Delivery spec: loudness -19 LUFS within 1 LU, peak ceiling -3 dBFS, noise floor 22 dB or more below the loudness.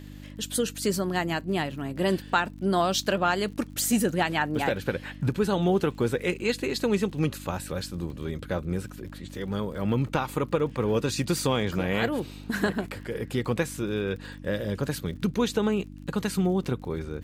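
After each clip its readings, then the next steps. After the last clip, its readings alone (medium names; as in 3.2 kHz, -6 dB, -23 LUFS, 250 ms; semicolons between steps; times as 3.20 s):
tick rate 50 per s; hum 50 Hz; highest harmonic 300 Hz; hum level -41 dBFS; loudness -28.0 LUFS; peak level -10.0 dBFS; loudness target -19.0 LUFS
-> de-click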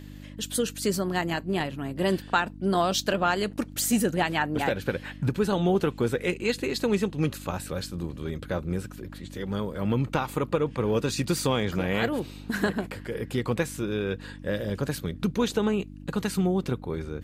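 tick rate 0.23 per s; hum 50 Hz; highest harmonic 300 Hz; hum level -41 dBFS
-> de-hum 50 Hz, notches 6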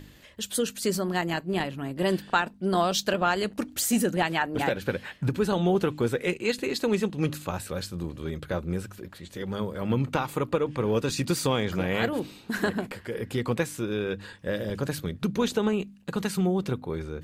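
hum not found; loudness -28.0 LUFS; peak level -10.5 dBFS; loudness target -19.0 LUFS
-> trim +9 dB; peak limiter -3 dBFS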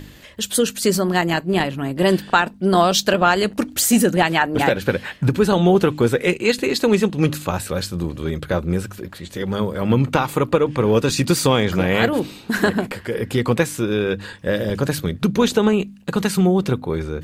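loudness -19.5 LUFS; peak level -3.0 dBFS; noise floor -42 dBFS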